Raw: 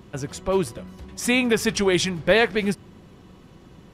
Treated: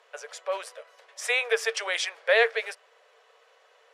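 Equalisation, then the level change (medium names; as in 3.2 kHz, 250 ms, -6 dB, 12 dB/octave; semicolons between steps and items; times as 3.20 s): rippled Chebyshev high-pass 440 Hz, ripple 6 dB; low-pass 10 kHz 12 dB/octave; 0.0 dB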